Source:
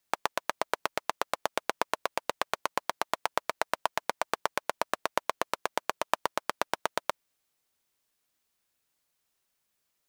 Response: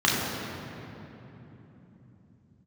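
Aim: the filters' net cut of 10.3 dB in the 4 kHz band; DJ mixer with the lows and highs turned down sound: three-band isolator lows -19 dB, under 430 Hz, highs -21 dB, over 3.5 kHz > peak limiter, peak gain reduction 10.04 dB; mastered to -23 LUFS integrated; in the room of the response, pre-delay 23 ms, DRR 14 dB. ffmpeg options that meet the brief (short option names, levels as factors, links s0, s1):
-filter_complex "[0:a]equalizer=f=4000:t=o:g=-7,asplit=2[s0][s1];[1:a]atrim=start_sample=2205,adelay=23[s2];[s1][s2]afir=irnorm=-1:irlink=0,volume=0.0266[s3];[s0][s3]amix=inputs=2:normalize=0,acrossover=split=430 3500:gain=0.112 1 0.0891[s4][s5][s6];[s4][s5][s6]amix=inputs=3:normalize=0,volume=8.41,alimiter=limit=0.891:level=0:latency=1"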